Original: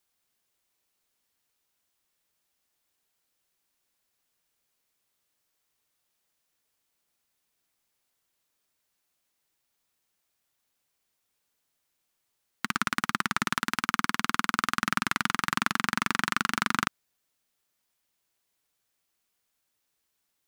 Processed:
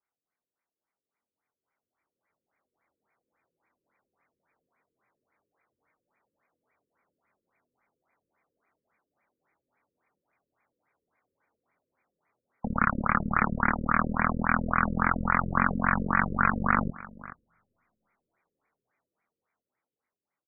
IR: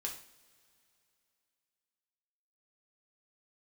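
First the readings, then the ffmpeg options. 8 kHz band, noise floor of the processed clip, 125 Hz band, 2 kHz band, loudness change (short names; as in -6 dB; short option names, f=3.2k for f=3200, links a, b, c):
under -40 dB, under -85 dBFS, +9.5 dB, +0.5 dB, +2.0 dB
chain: -filter_complex "[0:a]highpass=f=170:p=1,tiltshelf=f=1.1k:g=-3,bandreject=f=1.7k:w=14,asplit=2[a][b];[b]adelay=24,volume=-4dB[c];[a][c]amix=inputs=2:normalize=0,aeval=exprs='(tanh(17.8*val(0)+0.4)-tanh(0.4))/17.8':c=same,aecho=1:1:426:0.112,asplit=2[d][e];[1:a]atrim=start_sample=2205[f];[e][f]afir=irnorm=-1:irlink=0,volume=-16dB[g];[d][g]amix=inputs=2:normalize=0,dynaudnorm=f=380:g=13:m=16.5dB,afftfilt=real='re*lt(b*sr/1024,530*pow(2500/530,0.5+0.5*sin(2*PI*3.6*pts/sr)))':imag='im*lt(b*sr/1024,530*pow(2500/530,0.5+0.5*sin(2*PI*3.6*pts/sr)))':win_size=1024:overlap=0.75,volume=-4.5dB"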